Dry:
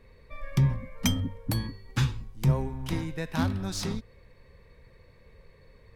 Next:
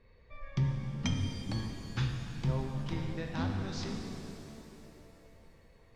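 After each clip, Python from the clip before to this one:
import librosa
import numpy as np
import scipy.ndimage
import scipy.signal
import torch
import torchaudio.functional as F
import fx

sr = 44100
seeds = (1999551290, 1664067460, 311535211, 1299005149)

y = scipy.signal.sosfilt(scipy.signal.butter(4, 5700.0, 'lowpass', fs=sr, output='sos'), x)
y = fx.rev_shimmer(y, sr, seeds[0], rt60_s=3.0, semitones=7, shimmer_db=-8, drr_db=3.0)
y = y * librosa.db_to_amplitude(-7.5)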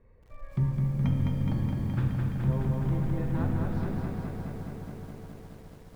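y = scipy.signal.sosfilt(scipy.signal.butter(2, 1500.0, 'lowpass', fs=sr, output='sos'), x)
y = fx.low_shelf(y, sr, hz=400.0, db=3.5)
y = fx.echo_crushed(y, sr, ms=210, feedback_pct=80, bits=10, wet_db=-3.5)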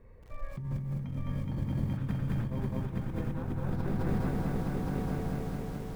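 y = fx.over_compress(x, sr, threshold_db=-33.0, ratio=-1.0)
y = y + 10.0 ** (-3.0 / 20.0) * np.pad(y, (int(867 * sr / 1000.0), 0))[:len(y)]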